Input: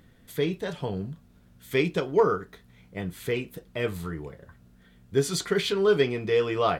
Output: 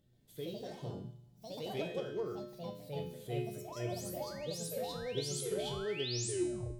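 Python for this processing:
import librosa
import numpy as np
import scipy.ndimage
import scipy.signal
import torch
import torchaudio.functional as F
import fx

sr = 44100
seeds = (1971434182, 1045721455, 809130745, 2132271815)

y = fx.tape_stop_end(x, sr, length_s=0.52)
y = fx.spec_paint(y, sr, seeds[0], shape='rise', start_s=5.45, length_s=0.87, low_hz=360.0, high_hz=10000.0, level_db=-26.0)
y = fx.band_shelf(y, sr, hz=1400.0, db=-10.0, octaves=1.7)
y = fx.comb_fb(y, sr, f0_hz=120.0, decay_s=0.83, harmonics='odd', damping=0.0, mix_pct=90)
y = fx.echo_pitch(y, sr, ms=134, semitones=3, count=3, db_per_echo=-3.0)
y = F.gain(torch.from_numpy(y), 1.5).numpy()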